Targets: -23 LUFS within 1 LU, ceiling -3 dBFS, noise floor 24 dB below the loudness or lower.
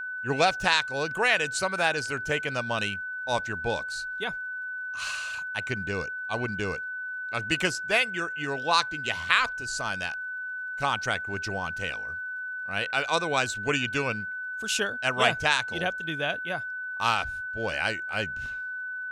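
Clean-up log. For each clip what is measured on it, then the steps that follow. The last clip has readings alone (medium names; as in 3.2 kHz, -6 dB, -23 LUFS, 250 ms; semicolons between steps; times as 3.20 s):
tick rate 29 per s; steady tone 1.5 kHz; tone level -32 dBFS; loudness -28.0 LUFS; peak level -5.0 dBFS; loudness target -23.0 LUFS
-> de-click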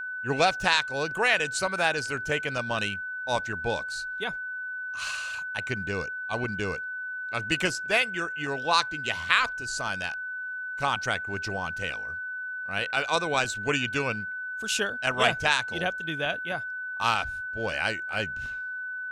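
tick rate 0.052 per s; steady tone 1.5 kHz; tone level -32 dBFS
-> band-stop 1.5 kHz, Q 30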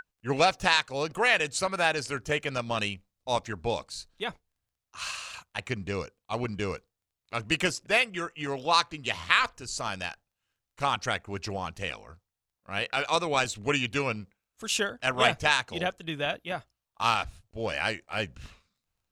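steady tone not found; loudness -29.0 LUFS; peak level -5.0 dBFS; loudness target -23.0 LUFS
-> trim +6 dB; peak limiter -3 dBFS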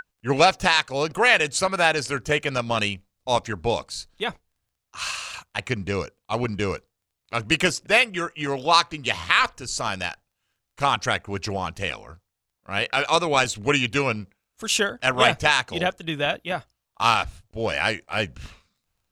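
loudness -23.0 LUFS; peak level -3.0 dBFS; noise floor -81 dBFS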